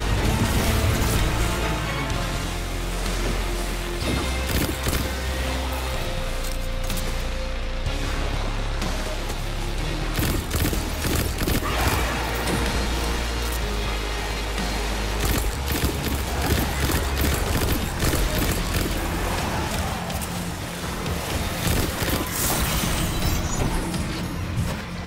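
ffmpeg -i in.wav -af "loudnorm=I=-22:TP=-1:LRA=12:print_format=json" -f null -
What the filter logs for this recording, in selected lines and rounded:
"input_i" : "-25.1",
"input_tp" : "-8.0",
"input_lra" : "4.2",
"input_thresh" : "-35.1",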